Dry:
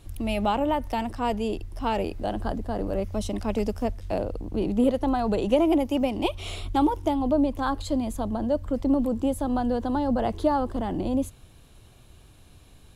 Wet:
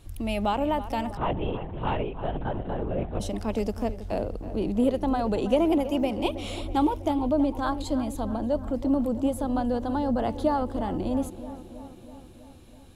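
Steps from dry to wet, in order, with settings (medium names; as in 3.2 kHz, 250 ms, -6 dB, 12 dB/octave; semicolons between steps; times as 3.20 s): on a send: filtered feedback delay 324 ms, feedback 65%, low-pass 2.6 kHz, level -13 dB; 1.17–3.20 s: on the sum: LPC vocoder at 8 kHz whisper; trim -1.5 dB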